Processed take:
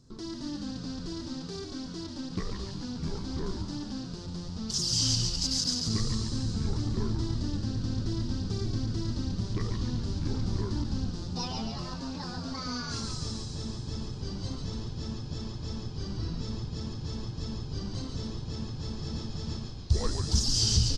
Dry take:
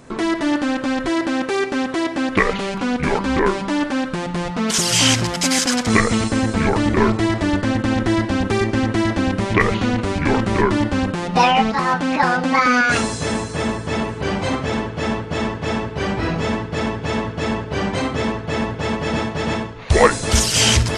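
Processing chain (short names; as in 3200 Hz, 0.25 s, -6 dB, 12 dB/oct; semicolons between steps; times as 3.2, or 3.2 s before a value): EQ curve 110 Hz 0 dB, 200 Hz -7 dB, 390 Hz -12 dB, 650 Hz -21 dB, 1200 Hz -17 dB, 2300 Hz -26 dB, 4900 Hz +3 dB, 9600 Hz -16 dB; frequency-shifting echo 0.141 s, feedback 57%, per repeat -85 Hz, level -4.5 dB; gain -8 dB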